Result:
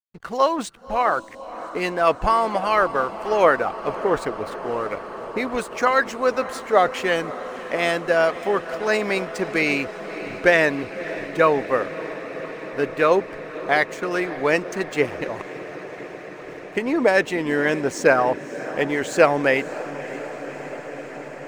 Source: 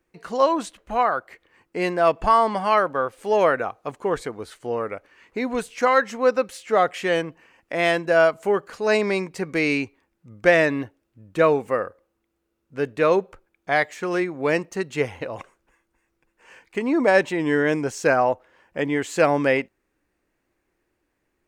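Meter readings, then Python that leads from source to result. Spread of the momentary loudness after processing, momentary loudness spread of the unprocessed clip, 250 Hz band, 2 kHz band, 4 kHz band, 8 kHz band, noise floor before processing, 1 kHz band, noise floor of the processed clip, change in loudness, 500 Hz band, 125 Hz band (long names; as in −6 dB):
14 LU, 14 LU, −0.5 dB, +2.5 dB, +2.0 dB, +2.0 dB, −75 dBFS, +1.0 dB, −37 dBFS, 0.0 dB, +0.5 dB, −1.0 dB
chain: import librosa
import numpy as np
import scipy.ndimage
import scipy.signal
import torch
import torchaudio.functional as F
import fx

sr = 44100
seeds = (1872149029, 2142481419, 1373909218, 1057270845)

y = fx.backlash(x, sr, play_db=-40.0)
y = fx.echo_diffused(y, sr, ms=581, feedback_pct=80, wet_db=-14.5)
y = fx.hpss(y, sr, part='percussive', gain_db=7)
y = F.gain(torch.from_numpy(y), -2.5).numpy()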